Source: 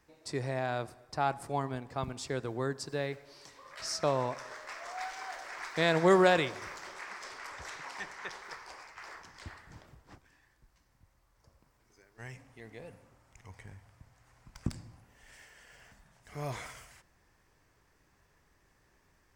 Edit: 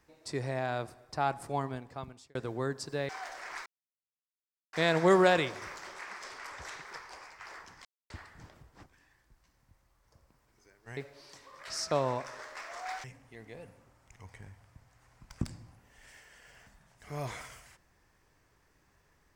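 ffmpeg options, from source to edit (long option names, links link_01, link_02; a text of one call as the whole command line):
ffmpeg -i in.wav -filter_complex "[0:a]asplit=8[link_01][link_02][link_03][link_04][link_05][link_06][link_07][link_08];[link_01]atrim=end=2.35,asetpts=PTS-STARTPTS,afade=type=out:start_time=1.64:duration=0.71[link_09];[link_02]atrim=start=2.35:end=3.092,asetpts=PTS-STARTPTS,afade=type=in:duration=0.004:curve=hsin[link_10];[link_03]atrim=start=5.158:end=5.73,asetpts=PTS-STARTPTS,afade=type=out:start_time=0.568:duration=0.004:curve=hsin,apad=pad_dur=1.07[link_11];[link_04]atrim=start=5.73:end=7.822,asetpts=PTS-STARTPTS,afade=type=in:duration=0.004:curve=hsin[link_12];[link_05]atrim=start=8.388:end=9.42,asetpts=PTS-STARTPTS,afade=type=out:start_time=1.028:duration=0.004:curve=hsin,apad=pad_dur=0.25[link_13];[link_06]atrim=start=9.42:end=12.292,asetpts=PTS-STARTPTS,afade=type=in:duration=0.004:curve=hsin[link_14];[link_07]atrim=start=3.088:end=5.162[link_15];[link_08]atrim=start=12.288[link_16];[link_09][link_10]concat=n=2:v=0:a=1[link_17];[link_11][link_12]concat=n=2:v=0:a=1[link_18];[link_17][link_18]acrossfade=duration=0.004:curve1=hsin:curve2=hsin[link_19];[link_13][link_14]concat=n=2:v=0:a=1[link_20];[link_19][link_20]acrossfade=duration=0.004:curve1=hsin:curve2=hsin[link_21];[link_21][link_15]acrossfade=duration=0.004:curve1=hsin:curve2=hsin[link_22];[link_22][link_16]acrossfade=duration=0.004:curve1=hsin:curve2=hsin" out.wav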